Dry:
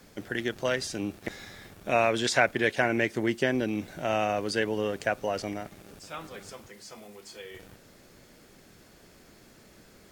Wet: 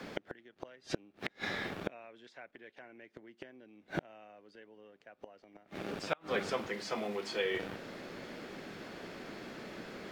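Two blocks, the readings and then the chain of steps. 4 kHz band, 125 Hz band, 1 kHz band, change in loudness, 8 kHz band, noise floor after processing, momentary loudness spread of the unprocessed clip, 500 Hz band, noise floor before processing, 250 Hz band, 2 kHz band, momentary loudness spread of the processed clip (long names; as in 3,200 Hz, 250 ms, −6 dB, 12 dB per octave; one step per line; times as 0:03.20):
−8.0 dB, −11.0 dB, −12.0 dB, −11.5 dB, −14.0 dB, −70 dBFS, 21 LU, −10.5 dB, −56 dBFS, −11.5 dB, −11.0 dB, 20 LU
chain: three-way crossover with the lows and the highs turned down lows −15 dB, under 160 Hz, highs −19 dB, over 4,200 Hz
in parallel at +2 dB: downward compressor 4 to 1, threshold −37 dBFS, peak gain reduction 16.5 dB
on the sum: gate with flip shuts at −22 dBFS, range −34 dB
level +4 dB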